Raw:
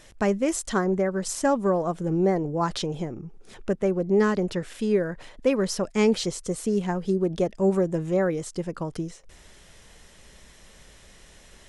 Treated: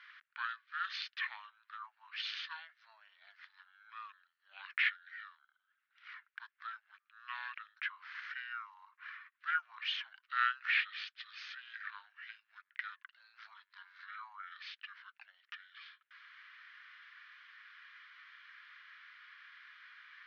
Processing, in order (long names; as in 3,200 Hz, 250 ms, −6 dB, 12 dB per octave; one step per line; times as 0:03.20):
Butterworth high-pass 2,500 Hz 48 dB per octave
head-to-tape spacing loss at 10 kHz 41 dB
wrong playback speed 78 rpm record played at 45 rpm
level +17 dB